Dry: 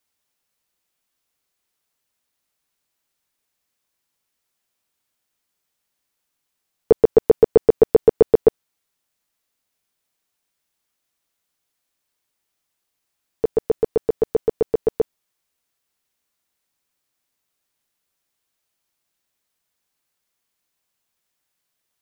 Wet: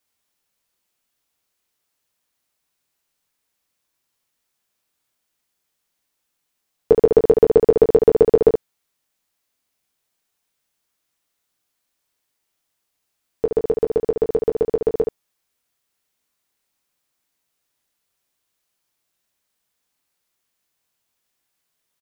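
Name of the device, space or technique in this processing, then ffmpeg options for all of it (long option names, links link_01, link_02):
slapback doubling: -filter_complex "[0:a]asplit=3[link_01][link_02][link_03];[link_02]adelay=24,volume=-8.5dB[link_04];[link_03]adelay=71,volume=-6dB[link_05];[link_01][link_04][link_05]amix=inputs=3:normalize=0"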